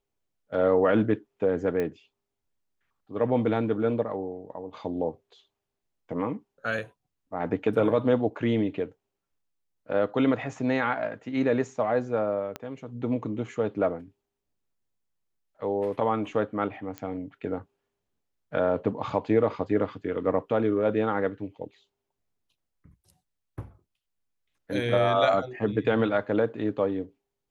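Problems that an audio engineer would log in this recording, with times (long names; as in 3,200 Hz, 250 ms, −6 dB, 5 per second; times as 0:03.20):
0:01.80: click −18 dBFS
0:12.56: click −19 dBFS
0:16.98: click −21 dBFS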